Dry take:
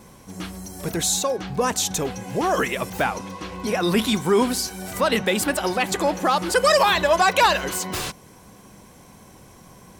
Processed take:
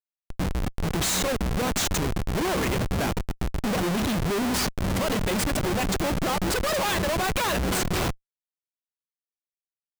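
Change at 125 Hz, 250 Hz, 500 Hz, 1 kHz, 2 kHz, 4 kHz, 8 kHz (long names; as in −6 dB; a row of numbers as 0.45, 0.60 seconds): +4.5, −1.0, −6.0, −7.5, −5.5, −4.0, −4.0 decibels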